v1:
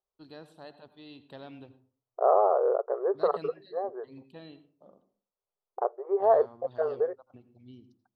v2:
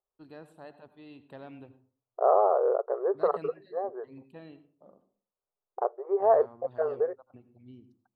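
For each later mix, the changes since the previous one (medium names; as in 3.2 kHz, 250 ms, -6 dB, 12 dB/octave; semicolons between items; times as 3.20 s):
master: add high-order bell 4.4 kHz -9.5 dB 1.2 oct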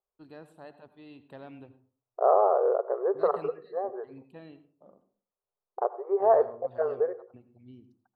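second voice: send on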